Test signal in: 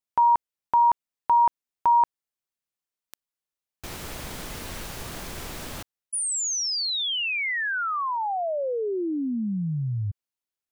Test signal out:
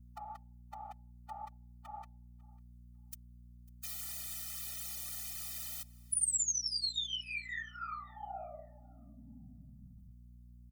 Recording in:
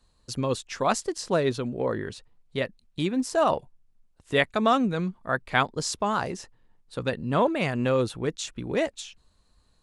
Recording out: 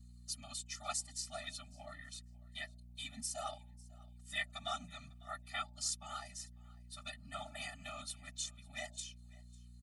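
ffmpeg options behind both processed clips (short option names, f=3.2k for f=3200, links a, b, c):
-filter_complex "[0:a]aderivative,bandreject=f=298.7:t=h:w=4,bandreject=f=597.4:t=h:w=4,bandreject=f=896.1:t=h:w=4,afftfilt=real='hypot(re,im)*cos(2*PI*random(0))':imag='hypot(re,im)*sin(2*PI*random(1))':win_size=512:overlap=0.75,asplit=2[a][b];[b]acompressor=threshold=-45dB:ratio=16:attack=14:release=745:knee=6:detection=rms,volume=1.5dB[c];[a][c]amix=inputs=2:normalize=0,aeval=exprs='val(0)+0.00141*(sin(2*PI*60*n/s)+sin(2*PI*2*60*n/s)/2+sin(2*PI*3*60*n/s)/3+sin(2*PI*4*60*n/s)/4+sin(2*PI*5*60*n/s)/5)':c=same,areverse,acompressor=mode=upward:threshold=-55dB:ratio=4:attack=0.13:release=50:knee=2.83:detection=peak,areverse,aecho=1:1:548|1096:0.0668|0.0114,afftfilt=real='re*eq(mod(floor(b*sr/1024/290),2),0)':imag='im*eq(mod(floor(b*sr/1024/290),2),0)':win_size=1024:overlap=0.75,volume=2dB"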